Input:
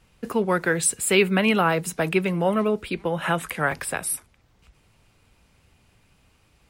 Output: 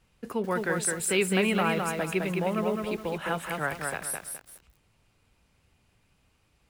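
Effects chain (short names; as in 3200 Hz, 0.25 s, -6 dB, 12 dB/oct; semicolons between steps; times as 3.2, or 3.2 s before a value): lo-fi delay 0.21 s, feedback 35%, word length 7-bit, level -3.5 dB; gain -7 dB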